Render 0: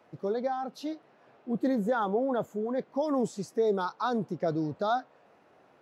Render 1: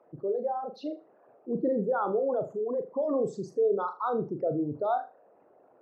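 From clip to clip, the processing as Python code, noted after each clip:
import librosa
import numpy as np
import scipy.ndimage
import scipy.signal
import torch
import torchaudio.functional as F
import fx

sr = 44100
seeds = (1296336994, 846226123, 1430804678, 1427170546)

y = fx.envelope_sharpen(x, sr, power=2.0)
y = fx.lowpass(y, sr, hz=2400.0, slope=6)
y = fx.room_flutter(y, sr, wall_m=6.9, rt60_s=0.28)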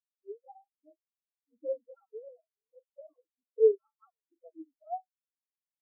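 y = fx.sine_speech(x, sr)
y = fx.noise_reduce_blind(y, sr, reduce_db=19)
y = fx.spectral_expand(y, sr, expansion=2.5)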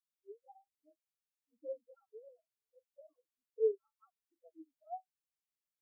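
y = fx.peak_eq(x, sr, hz=450.0, db=-7.0, octaves=2.4)
y = y * 10.0 ** (-2.0 / 20.0)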